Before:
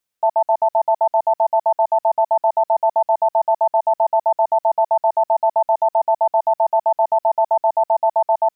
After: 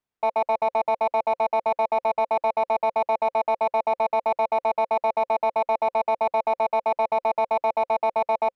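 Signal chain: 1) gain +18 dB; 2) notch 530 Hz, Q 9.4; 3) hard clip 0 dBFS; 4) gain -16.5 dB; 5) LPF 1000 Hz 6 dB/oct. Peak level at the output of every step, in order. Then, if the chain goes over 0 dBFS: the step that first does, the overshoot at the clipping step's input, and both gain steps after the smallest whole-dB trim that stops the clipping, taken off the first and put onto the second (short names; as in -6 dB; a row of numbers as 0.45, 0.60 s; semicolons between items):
+9.5, +9.5, 0.0, -16.5, -17.0 dBFS; step 1, 9.5 dB; step 1 +8 dB, step 4 -6.5 dB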